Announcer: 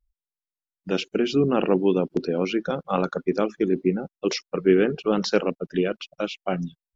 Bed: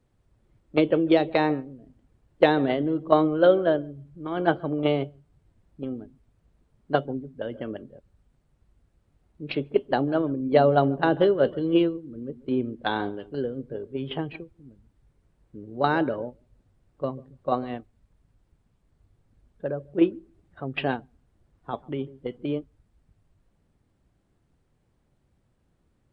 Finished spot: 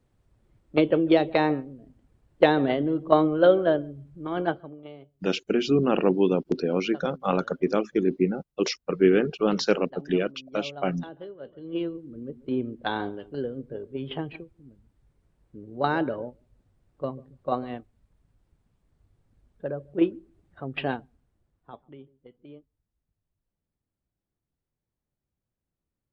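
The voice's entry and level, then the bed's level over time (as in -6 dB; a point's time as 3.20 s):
4.35 s, -1.0 dB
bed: 4.39 s 0 dB
4.84 s -20.5 dB
11.44 s -20.5 dB
12.00 s -2 dB
21.02 s -2 dB
22.16 s -18.5 dB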